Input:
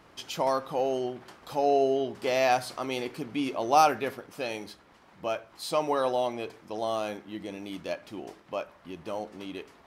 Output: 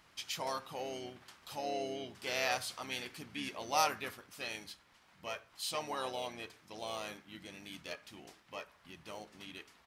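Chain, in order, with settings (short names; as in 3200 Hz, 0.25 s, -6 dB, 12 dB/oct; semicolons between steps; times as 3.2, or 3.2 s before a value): passive tone stack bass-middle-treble 5-5-5; harmoniser -5 st -8 dB; gain +4.5 dB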